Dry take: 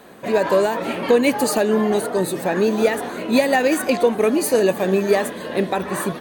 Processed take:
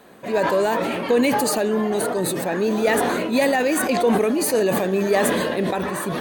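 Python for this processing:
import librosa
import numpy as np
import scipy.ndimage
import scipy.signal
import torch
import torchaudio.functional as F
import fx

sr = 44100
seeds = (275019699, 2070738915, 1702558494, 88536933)

y = fx.sustainer(x, sr, db_per_s=20.0)
y = F.gain(torch.from_numpy(y), -4.0).numpy()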